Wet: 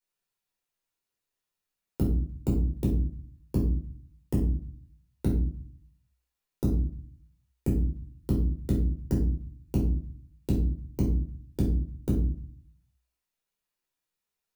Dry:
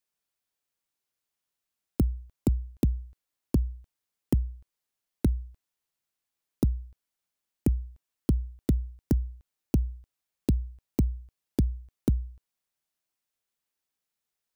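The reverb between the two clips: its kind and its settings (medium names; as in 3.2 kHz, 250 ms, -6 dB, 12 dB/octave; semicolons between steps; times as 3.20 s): simulated room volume 420 m³, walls furnished, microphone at 4.6 m; trim -7.5 dB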